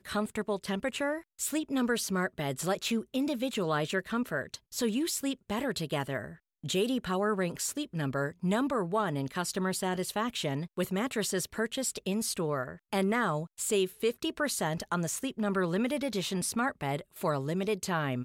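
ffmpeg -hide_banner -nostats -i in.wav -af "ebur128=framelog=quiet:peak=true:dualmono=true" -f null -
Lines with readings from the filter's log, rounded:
Integrated loudness:
  I:         -28.8 LUFS
  Threshold: -38.8 LUFS
Loudness range:
  LRA:         1.3 LU
  Threshold: -48.7 LUFS
  LRA low:   -29.4 LUFS
  LRA high:  -28.1 LUFS
True peak:
  Peak:      -17.4 dBFS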